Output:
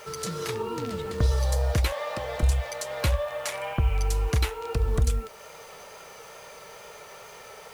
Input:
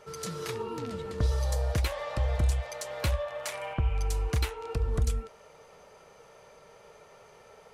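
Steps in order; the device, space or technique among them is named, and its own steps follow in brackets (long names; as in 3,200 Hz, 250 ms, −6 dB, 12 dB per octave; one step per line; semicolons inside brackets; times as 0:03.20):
noise-reduction cassette on a plain deck (one half of a high-frequency compander encoder only; tape wow and flutter 24 cents; white noise bed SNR 31 dB)
0:01.92–0:02.43: high-pass filter 200 Hz 12 dB per octave
level +4 dB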